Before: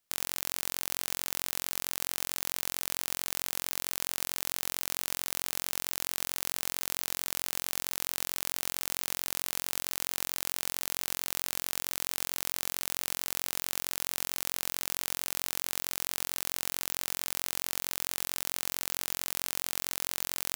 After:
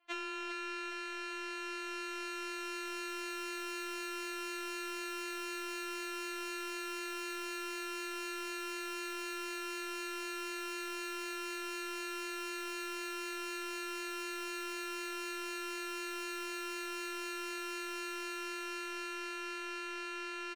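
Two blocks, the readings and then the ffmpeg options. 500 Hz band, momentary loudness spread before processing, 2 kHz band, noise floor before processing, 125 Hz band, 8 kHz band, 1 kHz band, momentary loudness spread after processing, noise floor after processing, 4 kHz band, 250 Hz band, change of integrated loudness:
+3.5 dB, 0 LU, +1.0 dB, -79 dBFS, under -25 dB, -14.0 dB, +1.5 dB, 1 LU, -42 dBFS, -7.5 dB, no reading, -7.5 dB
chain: -filter_complex "[0:a]highpass=f=320:t=q:w=0.5412,highpass=f=320:t=q:w=1.307,lowpass=f=3200:t=q:w=0.5176,lowpass=f=3200:t=q:w=0.7071,lowpass=f=3200:t=q:w=1.932,afreqshift=-180,dynaudnorm=f=300:g=17:m=3.16,asoftclip=type=tanh:threshold=0.0335,acrossover=split=340|1100[s0][s1][s2];[s0]acompressor=threshold=0.00141:ratio=4[s3];[s1]acompressor=threshold=0.00141:ratio=4[s4];[s2]acompressor=threshold=0.00316:ratio=4[s5];[s3][s4][s5]amix=inputs=3:normalize=0,aecho=1:1:402|804|1206|1608|2010|2412|2814:0.335|0.201|0.121|0.0724|0.0434|0.026|0.0156,afftfilt=real='re*4*eq(mod(b,16),0)':imag='im*4*eq(mod(b,16),0)':win_size=2048:overlap=0.75,volume=5.62"

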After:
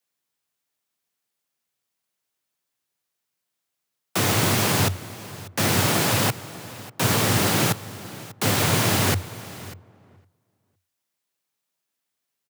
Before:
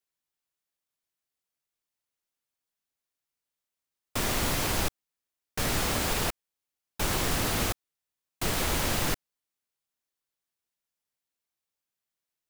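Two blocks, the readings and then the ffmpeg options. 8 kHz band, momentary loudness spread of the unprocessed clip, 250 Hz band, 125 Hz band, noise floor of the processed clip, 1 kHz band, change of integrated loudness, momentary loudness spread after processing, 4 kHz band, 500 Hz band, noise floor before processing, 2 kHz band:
+7.0 dB, 10 LU, +9.0 dB, +11.0 dB, -82 dBFS, +7.5 dB, +7.5 dB, 18 LU, +7.0 dB, +8.0 dB, under -85 dBFS, +7.5 dB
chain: -filter_complex "[0:a]asplit=2[s0][s1];[s1]adelay=510,lowpass=f=1300:p=1,volume=0.0944,asplit=2[s2][s3];[s3]adelay=510,lowpass=f=1300:p=1,volume=0.29[s4];[s2][s4]amix=inputs=2:normalize=0[s5];[s0][s5]amix=inputs=2:normalize=0,afreqshift=89,asplit=2[s6][s7];[s7]aecho=0:1:593:0.119[s8];[s6][s8]amix=inputs=2:normalize=0,volume=2.24"

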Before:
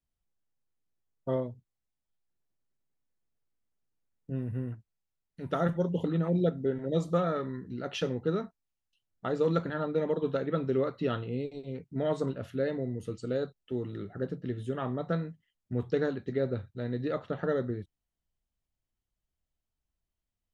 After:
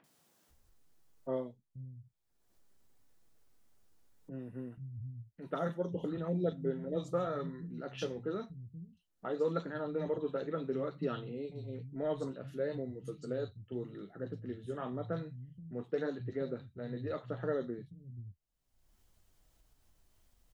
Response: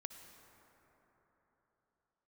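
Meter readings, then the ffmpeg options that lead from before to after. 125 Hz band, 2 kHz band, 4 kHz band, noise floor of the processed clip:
-7.5 dB, -7.0 dB, -7.5 dB, -76 dBFS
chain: -filter_complex "[0:a]acrossover=split=150|2500[s0][s1][s2];[s2]adelay=40[s3];[s0]adelay=480[s4];[s4][s1][s3]amix=inputs=3:normalize=0,flanger=delay=6.1:depth=3.7:regen=-53:speed=0.92:shape=sinusoidal,acompressor=mode=upward:threshold=0.00501:ratio=2.5,volume=0.841"

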